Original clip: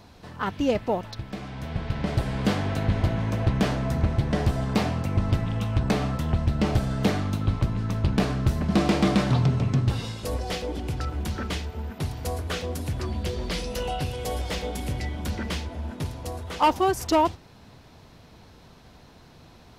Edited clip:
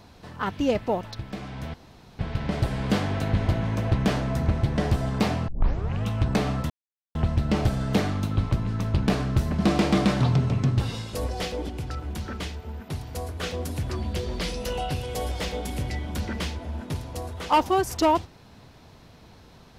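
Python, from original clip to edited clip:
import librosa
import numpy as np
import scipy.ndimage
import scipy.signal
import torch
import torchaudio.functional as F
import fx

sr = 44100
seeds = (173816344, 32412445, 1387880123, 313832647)

y = fx.edit(x, sr, fx.insert_room_tone(at_s=1.74, length_s=0.45),
    fx.tape_start(start_s=5.03, length_s=0.56),
    fx.insert_silence(at_s=6.25, length_s=0.45),
    fx.clip_gain(start_s=10.79, length_s=1.74, db=-3.0), tone=tone)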